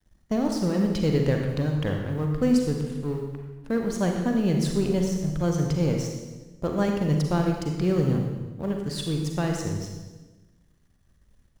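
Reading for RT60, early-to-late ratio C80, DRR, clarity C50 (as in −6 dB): 1.2 s, 5.5 dB, 2.0 dB, 3.5 dB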